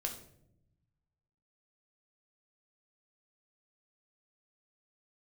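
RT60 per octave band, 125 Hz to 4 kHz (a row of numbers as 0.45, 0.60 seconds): 1.7, 1.4, 0.95, 0.55, 0.50, 0.45 seconds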